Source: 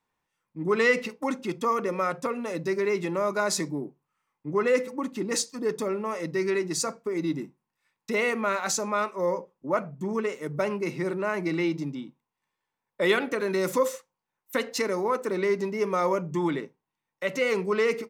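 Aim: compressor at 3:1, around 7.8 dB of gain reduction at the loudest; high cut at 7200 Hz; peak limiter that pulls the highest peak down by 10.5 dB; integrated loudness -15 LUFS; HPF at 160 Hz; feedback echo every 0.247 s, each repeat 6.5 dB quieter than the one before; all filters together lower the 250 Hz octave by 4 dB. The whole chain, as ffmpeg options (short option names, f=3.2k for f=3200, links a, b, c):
-af "highpass=160,lowpass=7.2k,equalizer=f=250:t=o:g=-5,acompressor=threshold=-29dB:ratio=3,alimiter=level_in=4dB:limit=-24dB:level=0:latency=1,volume=-4dB,aecho=1:1:247|494|741|988|1235|1482:0.473|0.222|0.105|0.0491|0.0231|0.0109,volume=21.5dB"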